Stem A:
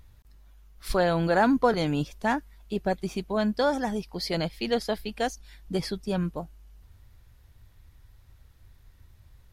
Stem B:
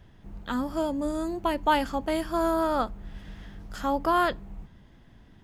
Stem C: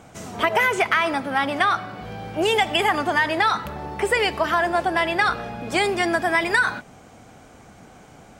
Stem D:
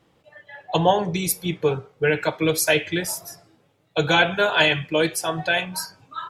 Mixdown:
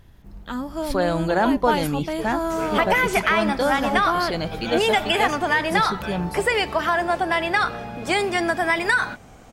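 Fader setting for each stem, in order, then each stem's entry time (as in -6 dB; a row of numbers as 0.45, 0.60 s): +1.5, 0.0, -0.5, -14.0 dB; 0.00, 0.00, 2.35, 0.55 s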